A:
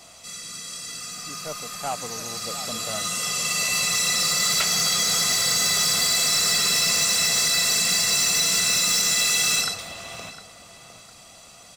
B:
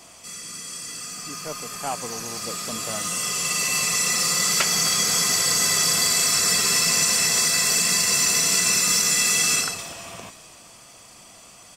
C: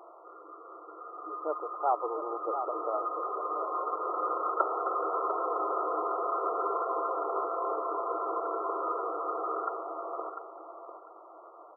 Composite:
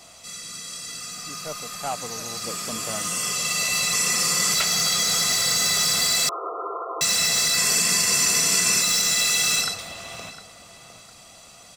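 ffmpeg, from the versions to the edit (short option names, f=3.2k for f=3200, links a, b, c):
-filter_complex "[1:a]asplit=3[a][b][c];[0:a]asplit=5[d][e][f][g][h];[d]atrim=end=2.442[i];[a]atrim=start=2.438:end=3.352[j];[e]atrim=start=3.348:end=3.932[k];[b]atrim=start=3.928:end=4.542[l];[f]atrim=start=4.538:end=6.292[m];[2:a]atrim=start=6.288:end=7.012[n];[g]atrim=start=7.008:end=7.572[o];[c]atrim=start=7.568:end=8.822[p];[h]atrim=start=8.818[q];[i][j]acrossfade=d=0.004:c1=hsin:c2=hsin[r];[r][k]acrossfade=d=0.004:c1=hsin:c2=hsin[s];[s][l]acrossfade=d=0.004:c1=hsin:c2=hsin[t];[t][m]acrossfade=d=0.004:c1=hsin:c2=hsin[u];[u][n]acrossfade=d=0.004:c1=hsin:c2=hsin[v];[v][o]acrossfade=d=0.004:c1=hsin:c2=hsin[w];[w][p]acrossfade=d=0.004:c1=hsin:c2=hsin[x];[x][q]acrossfade=d=0.004:c1=hsin:c2=hsin"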